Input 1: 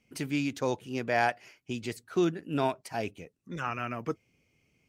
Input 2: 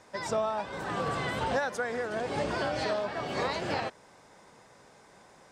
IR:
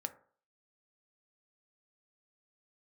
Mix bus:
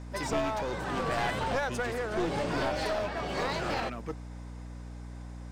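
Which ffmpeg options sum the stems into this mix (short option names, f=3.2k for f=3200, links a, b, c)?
-filter_complex "[0:a]volume=-4dB[a];[1:a]aeval=exprs='val(0)+0.00562*(sin(2*PI*60*n/s)+sin(2*PI*2*60*n/s)/2+sin(2*PI*3*60*n/s)/3+sin(2*PI*4*60*n/s)/4+sin(2*PI*5*60*n/s)/5)':c=same,volume=0.5dB[b];[a][b]amix=inputs=2:normalize=0,aeval=exprs='clip(val(0),-1,0.0316)':c=same,aeval=exprs='val(0)+0.00316*(sin(2*PI*60*n/s)+sin(2*PI*2*60*n/s)/2+sin(2*PI*3*60*n/s)/3+sin(2*PI*4*60*n/s)/4+sin(2*PI*5*60*n/s)/5)':c=same"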